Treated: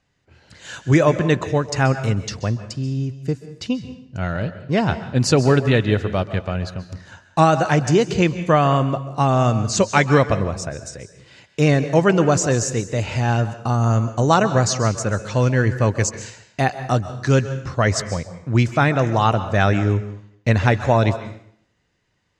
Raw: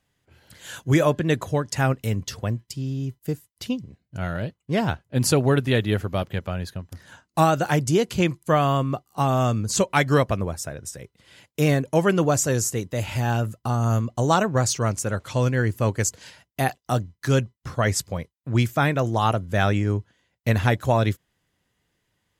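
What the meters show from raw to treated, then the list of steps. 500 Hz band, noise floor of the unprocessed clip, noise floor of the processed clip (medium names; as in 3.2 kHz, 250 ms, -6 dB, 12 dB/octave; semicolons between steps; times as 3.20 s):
+4.5 dB, -76 dBFS, -62 dBFS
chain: low-pass 7 kHz 24 dB/octave; band-stop 3.3 kHz, Q 11; plate-style reverb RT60 0.65 s, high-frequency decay 0.9×, pre-delay 120 ms, DRR 11.5 dB; trim +4 dB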